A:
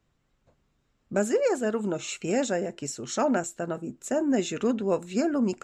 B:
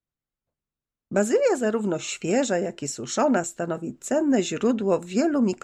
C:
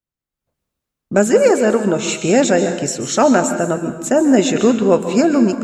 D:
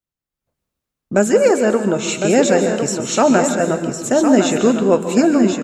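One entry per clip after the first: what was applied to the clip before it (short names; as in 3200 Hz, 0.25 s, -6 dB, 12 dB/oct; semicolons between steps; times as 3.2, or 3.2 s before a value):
gate -53 dBFS, range -24 dB; gain +3.5 dB
AGC gain up to 14.5 dB; plate-style reverb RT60 0.92 s, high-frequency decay 0.9×, pre-delay 0.12 s, DRR 8 dB; gain -1 dB
echo 1.057 s -7 dB; gain -1 dB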